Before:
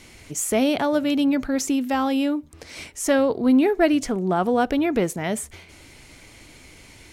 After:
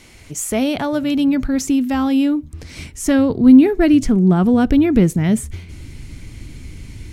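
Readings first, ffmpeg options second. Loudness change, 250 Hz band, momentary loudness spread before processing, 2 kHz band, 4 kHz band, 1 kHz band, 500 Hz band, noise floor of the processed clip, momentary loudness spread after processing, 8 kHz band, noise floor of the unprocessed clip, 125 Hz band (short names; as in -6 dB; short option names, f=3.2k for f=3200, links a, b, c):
+6.5 dB, +8.0 dB, 12 LU, +1.0 dB, +1.5 dB, -1.5 dB, +1.0 dB, -41 dBFS, 18 LU, +1.5 dB, -48 dBFS, +14.0 dB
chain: -af "asubboost=boost=8.5:cutoff=220,volume=1.5dB"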